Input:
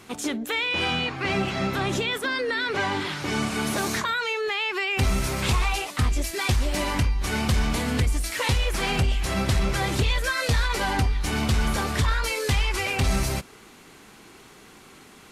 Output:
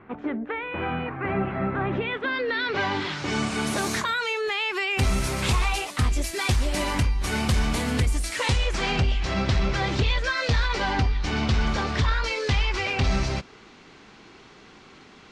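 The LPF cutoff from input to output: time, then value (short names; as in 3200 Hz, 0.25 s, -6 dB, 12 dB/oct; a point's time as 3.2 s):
LPF 24 dB/oct
1.79 s 1900 Hz
2.64 s 4800 Hz
3.88 s 12000 Hz
8.12 s 12000 Hz
9.08 s 5700 Hz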